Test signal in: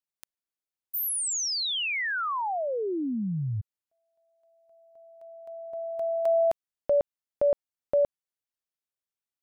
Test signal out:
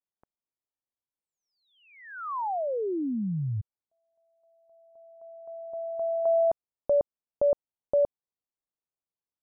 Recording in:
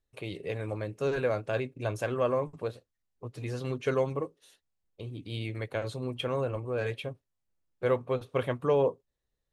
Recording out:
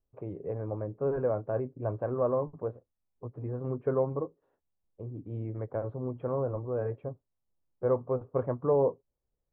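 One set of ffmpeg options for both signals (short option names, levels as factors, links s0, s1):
-af "lowpass=f=1100:w=0.5412,lowpass=f=1100:w=1.3066"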